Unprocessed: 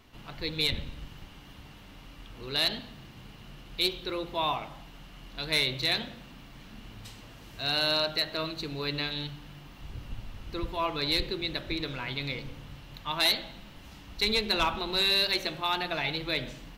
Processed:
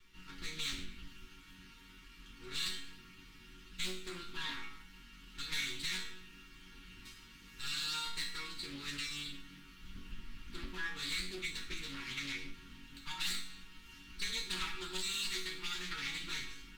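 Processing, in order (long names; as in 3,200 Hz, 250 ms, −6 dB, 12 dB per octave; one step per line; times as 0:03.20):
lower of the sound and its delayed copy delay 2.2 ms
resonators tuned to a chord F#3 major, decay 0.41 s
downward compressor 2 to 1, threshold −52 dBFS, peak gain reduction 6.5 dB
Chebyshev band-stop filter 300–1,300 Hz, order 2
highs frequency-modulated by the lows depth 0.43 ms
level +15.5 dB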